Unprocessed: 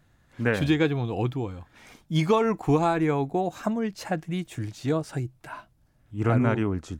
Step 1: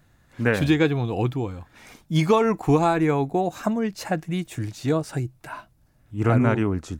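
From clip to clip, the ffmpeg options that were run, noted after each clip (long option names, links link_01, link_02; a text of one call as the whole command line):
ffmpeg -i in.wav -af "highshelf=frequency=9500:gain=4.5,bandreject=frequency=3200:width=26,volume=3dB" out.wav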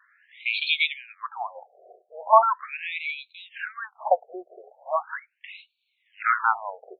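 ffmpeg -i in.wav -af "equalizer=frequency=430:width_type=o:width=0.47:gain=-7,afftfilt=real='re*between(b*sr/1024,520*pow(3200/520,0.5+0.5*sin(2*PI*0.39*pts/sr))/1.41,520*pow(3200/520,0.5+0.5*sin(2*PI*0.39*pts/sr))*1.41)':imag='im*between(b*sr/1024,520*pow(3200/520,0.5+0.5*sin(2*PI*0.39*pts/sr))/1.41,520*pow(3200/520,0.5+0.5*sin(2*PI*0.39*pts/sr))*1.41)':win_size=1024:overlap=0.75,volume=9dB" out.wav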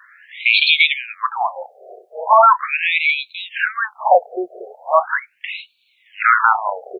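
ffmpeg -i in.wav -filter_complex "[0:a]acrossover=split=700[link_01][link_02];[link_01]adelay=30[link_03];[link_03][link_02]amix=inputs=2:normalize=0,alimiter=level_in=15.5dB:limit=-1dB:release=50:level=0:latency=1,volume=-1dB" out.wav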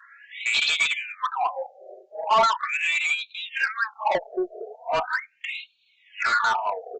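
ffmpeg -i in.wav -filter_complex "[0:a]aresample=16000,asoftclip=type=tanh:threshold=-14dB,aresample=44100,asplit=2[link_01][link_02];[link_02]adelay=3.2,afreqshift=0.52[link_03];[link_01][link_03]amix=inputs=2:normalize=1" out.wav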